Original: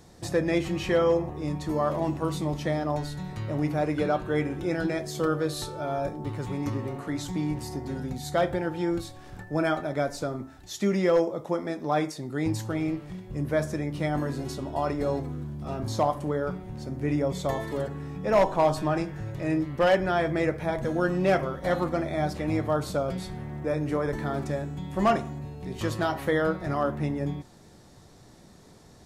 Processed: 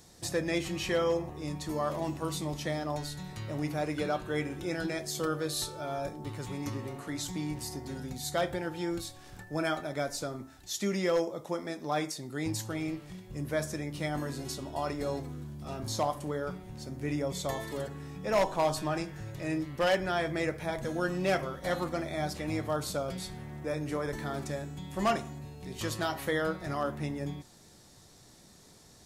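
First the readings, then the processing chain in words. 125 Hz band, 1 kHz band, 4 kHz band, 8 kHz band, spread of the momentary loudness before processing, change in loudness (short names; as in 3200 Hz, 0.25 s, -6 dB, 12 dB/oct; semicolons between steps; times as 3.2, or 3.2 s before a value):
-6.5 dB, -5.5 dB, +1.0 dB, +3.5 dB, 10 LU, -5.5 dB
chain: high shelf 2600 Hz +11 dB; gain -6.5 dB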